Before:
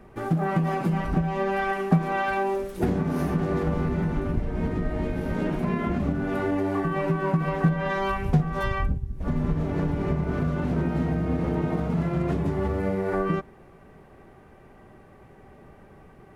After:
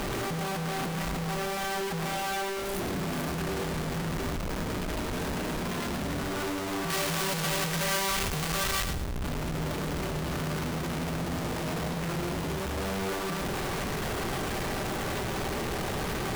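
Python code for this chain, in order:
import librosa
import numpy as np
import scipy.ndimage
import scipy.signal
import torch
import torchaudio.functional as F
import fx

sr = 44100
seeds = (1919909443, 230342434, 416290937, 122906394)

y = np.sign(x) * np.sqrt(np.mean(np.square(x)))
y = fx.high_shelf(y, sr, hz=2100.0, db=9.0, at=(6.9, 8.93))
y = fx.echo_feedback(y, sr, ms=109, feedback_pct=34, wet_db=-9.5)
y = F.gain(torch.from_numpy(y), -6.0).numpy()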